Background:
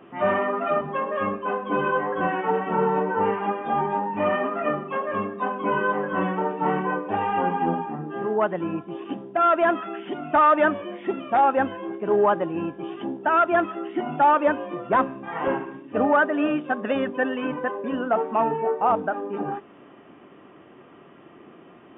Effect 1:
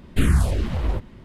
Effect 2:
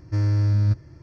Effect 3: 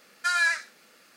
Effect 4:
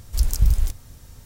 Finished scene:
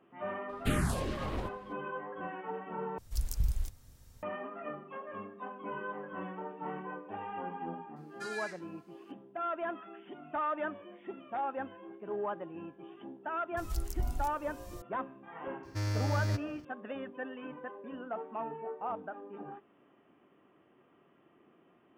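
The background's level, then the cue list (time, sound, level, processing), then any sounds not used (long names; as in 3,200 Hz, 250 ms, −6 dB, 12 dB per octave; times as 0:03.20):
background −16.5 dB
0:00.49: mix in 1 −13.5 dB + ceiling on every frequency bin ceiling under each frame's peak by 14 dB
0:02.98: overwrite with 4 −13 dB
0:07.96: mix in 3 −17.5 dB
0:13.57: mix in 4 −15.5 dB + multiband upward and downward compressor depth 70%
0:15.63: mix in 2 −12 dB + spectral envelope flattened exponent 0.6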